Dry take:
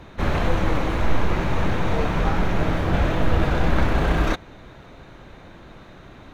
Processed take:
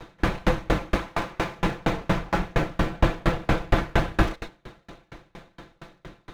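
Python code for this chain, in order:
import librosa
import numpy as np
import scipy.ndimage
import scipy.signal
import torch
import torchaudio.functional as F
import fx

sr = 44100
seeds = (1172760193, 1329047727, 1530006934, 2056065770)

y = fx.lower_of_two(x, sr, delay_ms=5.9)
y = fx.low_shelf(y, sr, hz=200.0, db=-10.5, at=(0.96, 1.59))
y = fx.rev_gated(y, sr, seeds[0], gate_ms=140, shape='flat', drr_db=9.5)
y = fx.tremolo_decay(y, sr, direction='decaying', hz=4.3, depth_db=34)
y = y * 10.0 ** (7.0 / 20.0)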